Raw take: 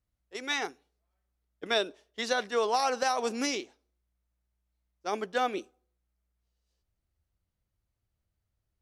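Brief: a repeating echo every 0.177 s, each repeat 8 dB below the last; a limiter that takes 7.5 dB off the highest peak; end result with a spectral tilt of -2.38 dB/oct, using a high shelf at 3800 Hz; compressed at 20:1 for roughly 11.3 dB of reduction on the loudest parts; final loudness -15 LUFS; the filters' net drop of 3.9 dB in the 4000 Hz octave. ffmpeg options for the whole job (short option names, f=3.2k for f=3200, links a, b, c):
-af "highshelf=f=3.8k:g=5.5,equalizer=f=4k:t=o:g=-8.5,acompressor=threshold=-34dB:ratio=20,alimiter=level_in=7.5dB:limit=-24dB:level=0:latency=1,volume=-7.5dB,aecho=1:1:177|354|531|708|885:0.398|0.159|0.0637|0.0255|0.0102,volume=27.5dB"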